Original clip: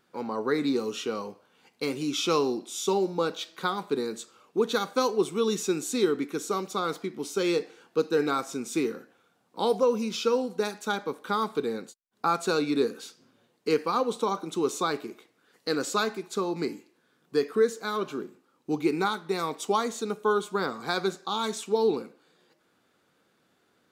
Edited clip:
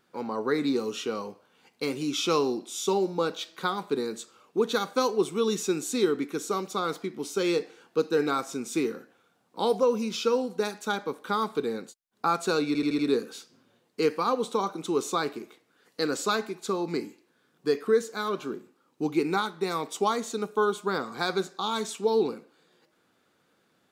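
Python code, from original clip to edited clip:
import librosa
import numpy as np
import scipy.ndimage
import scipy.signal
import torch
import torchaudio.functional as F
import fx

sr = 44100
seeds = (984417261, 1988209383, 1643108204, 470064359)

y = fx.edit(x, sr, fx.stutter(start_s=12.67, slice_s=0.08, count=5), tone=tone)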